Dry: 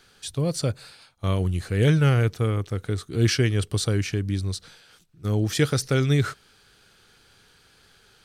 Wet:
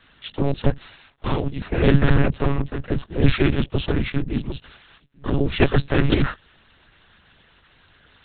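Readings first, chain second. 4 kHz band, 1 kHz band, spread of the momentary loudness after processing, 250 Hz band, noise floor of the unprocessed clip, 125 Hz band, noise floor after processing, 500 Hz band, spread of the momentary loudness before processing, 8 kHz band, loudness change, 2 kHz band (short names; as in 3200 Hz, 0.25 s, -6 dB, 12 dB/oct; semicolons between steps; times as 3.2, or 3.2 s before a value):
-0.5 dB, +5.5 dB, 15 LU, +4.0 dB, -58 dBFS, -0.5 dB, -57 dBFS, +3.0 dB, 10 LU, under -40 dB, +2.0 dB, +3.5 dB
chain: noise vocoder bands 12; monotone LPC vocoder at 8 kHz 140 Hz; gain +4.5 dB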